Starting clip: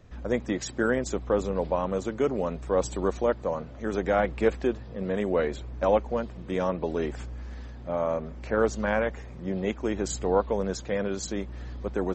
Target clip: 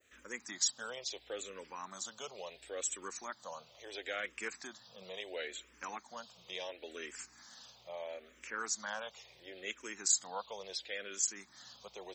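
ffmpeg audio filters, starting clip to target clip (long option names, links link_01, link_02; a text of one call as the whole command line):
ffmpeg -i in.wav -filter_complex "[0:a]aderivative,asplit=2[link_01][link_02];[link_02]acompressor=threshold=-58dB:ratio=6,volume=-2dB[link_03];[link_01][link_03]amix=inputs=2:normalize=0,adynamicequalizer=threshold=0.00112:dfrequency=3700:dqfactor=1:tfrequency=3700:tqfactor=1:attack=5:release=100:ratio=0.375:range=3:mode=boostabove:tftype=bell,asplit=2[link_04][link_05];[link_05]afreqshift=-0.73[link_06];[link_04][link_06]amix=inputs=2:normalize=1,volume=4.5dB" out.wav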